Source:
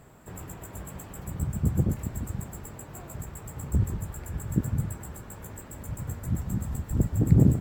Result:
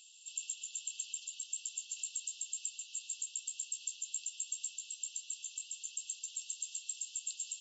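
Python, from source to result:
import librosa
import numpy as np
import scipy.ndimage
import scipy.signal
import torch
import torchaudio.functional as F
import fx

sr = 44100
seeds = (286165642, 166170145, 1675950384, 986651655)

y = fx.brickwall_bandpass(x, sr, low_hz=2600.0, high_hz=7600.0)
y = F.gain(torch.from_numpy(y), 11.5).numpy()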